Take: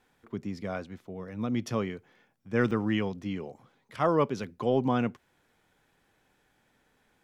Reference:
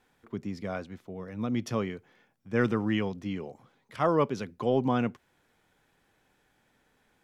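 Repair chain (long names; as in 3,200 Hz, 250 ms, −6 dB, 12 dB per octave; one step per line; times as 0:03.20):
repair the gap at 0:02.71/0:04.44, 4.7 ms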